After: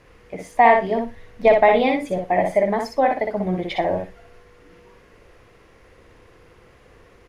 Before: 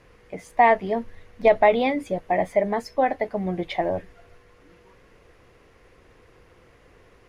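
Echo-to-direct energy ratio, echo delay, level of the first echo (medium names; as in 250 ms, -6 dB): -4.0 dB, 60 ms, -4.0 dB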